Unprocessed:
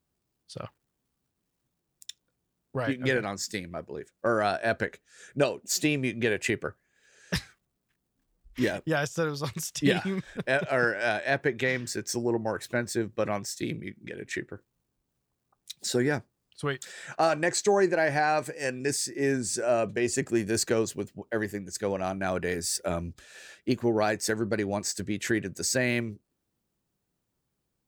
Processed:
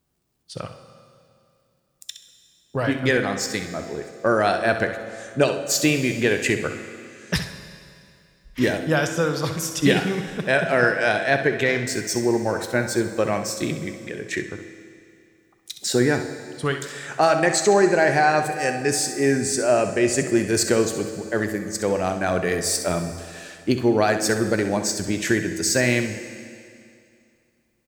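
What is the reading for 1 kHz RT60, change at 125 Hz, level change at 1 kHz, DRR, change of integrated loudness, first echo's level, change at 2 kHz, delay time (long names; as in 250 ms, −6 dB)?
2.4 s, +7.0 dB, +7.0 dB, 6.5 dB, +7.0 dB, −10.5 dB, +7.0 dB, 65 ms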